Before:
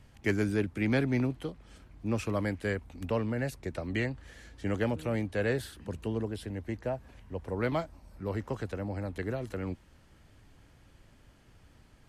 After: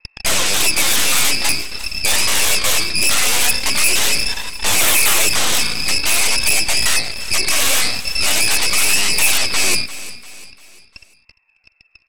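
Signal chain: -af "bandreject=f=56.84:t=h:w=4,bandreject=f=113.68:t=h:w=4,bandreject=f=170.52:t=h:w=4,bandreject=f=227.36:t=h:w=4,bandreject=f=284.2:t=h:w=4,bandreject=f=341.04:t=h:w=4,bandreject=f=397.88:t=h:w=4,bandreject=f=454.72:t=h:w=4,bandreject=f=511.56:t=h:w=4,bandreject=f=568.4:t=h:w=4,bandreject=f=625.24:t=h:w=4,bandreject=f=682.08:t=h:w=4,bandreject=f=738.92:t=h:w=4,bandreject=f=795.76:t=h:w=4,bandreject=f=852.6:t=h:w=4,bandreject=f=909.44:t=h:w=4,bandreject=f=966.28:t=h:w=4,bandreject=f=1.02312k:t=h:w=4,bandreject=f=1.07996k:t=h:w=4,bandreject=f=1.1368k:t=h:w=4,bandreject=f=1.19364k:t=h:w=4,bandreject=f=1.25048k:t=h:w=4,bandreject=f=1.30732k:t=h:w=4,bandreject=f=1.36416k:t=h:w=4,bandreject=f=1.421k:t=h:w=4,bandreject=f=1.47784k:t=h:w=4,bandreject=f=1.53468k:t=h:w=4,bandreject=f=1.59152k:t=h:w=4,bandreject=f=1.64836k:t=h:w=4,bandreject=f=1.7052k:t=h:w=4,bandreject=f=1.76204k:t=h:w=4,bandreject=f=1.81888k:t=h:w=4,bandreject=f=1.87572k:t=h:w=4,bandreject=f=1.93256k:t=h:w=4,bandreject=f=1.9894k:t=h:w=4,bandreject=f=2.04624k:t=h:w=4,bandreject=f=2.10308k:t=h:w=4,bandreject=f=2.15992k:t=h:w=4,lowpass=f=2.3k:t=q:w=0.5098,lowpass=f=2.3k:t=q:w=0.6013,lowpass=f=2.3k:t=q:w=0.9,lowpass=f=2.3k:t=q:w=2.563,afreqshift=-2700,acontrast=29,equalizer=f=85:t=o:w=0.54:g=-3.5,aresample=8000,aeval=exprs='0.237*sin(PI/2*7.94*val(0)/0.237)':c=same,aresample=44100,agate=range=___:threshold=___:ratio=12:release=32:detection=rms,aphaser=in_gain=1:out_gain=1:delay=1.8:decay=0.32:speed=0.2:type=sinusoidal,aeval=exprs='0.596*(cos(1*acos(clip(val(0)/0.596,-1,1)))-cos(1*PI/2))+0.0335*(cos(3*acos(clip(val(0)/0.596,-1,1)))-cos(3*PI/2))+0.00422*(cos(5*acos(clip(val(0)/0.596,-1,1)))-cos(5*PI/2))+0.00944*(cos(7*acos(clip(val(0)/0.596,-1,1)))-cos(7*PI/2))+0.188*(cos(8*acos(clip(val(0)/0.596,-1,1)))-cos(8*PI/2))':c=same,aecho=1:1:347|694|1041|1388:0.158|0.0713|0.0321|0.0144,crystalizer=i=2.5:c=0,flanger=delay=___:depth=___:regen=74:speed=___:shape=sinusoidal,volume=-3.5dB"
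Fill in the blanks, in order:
-24dB, -27dB, 1, 3.1, 0.44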